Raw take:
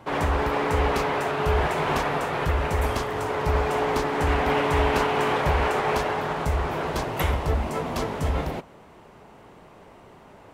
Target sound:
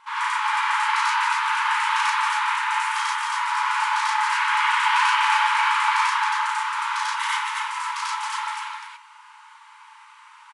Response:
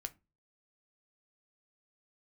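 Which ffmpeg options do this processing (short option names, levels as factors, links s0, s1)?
-filter_complex "[0:a]aecho=1:1:34.99|271.1:0.891|0.794,asplit=2[s0][s1];[1:a]atrim=start_sample=2205,adelay=92[s2];[s1][s2]afir=irnorm=-1:irlink=0,volume=1.78[s3];[s0][s3]amix=inputs=2:normalize=0,afftfilt=real='re*between(b*sr/4096,840,11000)':imag='im*between(b*sr/4096,840,11000)':win_size=4096:overlap=0.75,volume=0.891"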